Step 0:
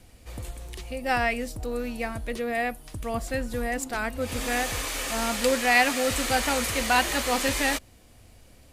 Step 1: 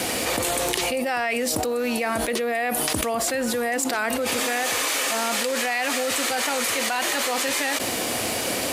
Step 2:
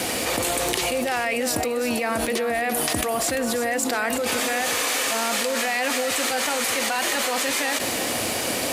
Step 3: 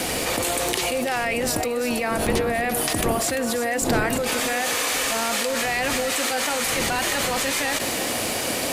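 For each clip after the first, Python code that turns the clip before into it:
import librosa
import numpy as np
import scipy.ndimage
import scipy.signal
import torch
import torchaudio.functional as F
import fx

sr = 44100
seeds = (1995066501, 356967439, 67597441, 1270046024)

y1 = scipy.signal.sosfilt(scipy.signal.butter(2, 310.0, 'highpass', fs=sr, output='sos'), x)
y1 = fx.env_flatten(y1, sr, amount_pct=100)
y1 = F.gain(torch.from_numpy(y1), -7.0).numpy()
y2 = fx.echo_feedback(y1, sr, ms=343, feedback_pct=30, wet_db=-10)
y3 = fx.dmg_wind(y2, sr, seeds[0], corner_hz=430.0, level_db=-34.0)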